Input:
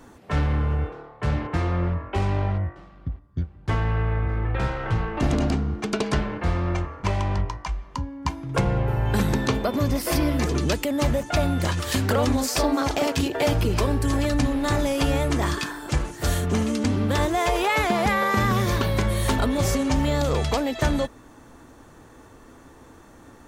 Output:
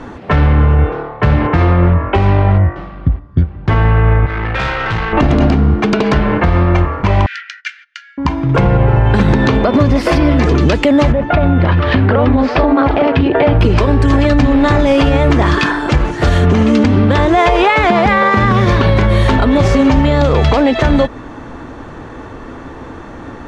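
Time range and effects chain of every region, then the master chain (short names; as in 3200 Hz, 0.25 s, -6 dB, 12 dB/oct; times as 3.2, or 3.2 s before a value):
4.26–5.13 tilt shelf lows -8 dB, about 1300 Hz + tube stage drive 31 dB, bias 0.45
7.26–8.18 gate -38 dBFS, range -19 dB + Chebyshev high-pass 1400 Hz, order 8
11.12–13.61 air absorption 340 m + compressor 2.5:1, threshold -25 dBFS
whole clip: LPF 3200 Hz 12 dB/oct; compressor, threshold -24 dBFS; maximiser +19.5 dB; gain -1 dB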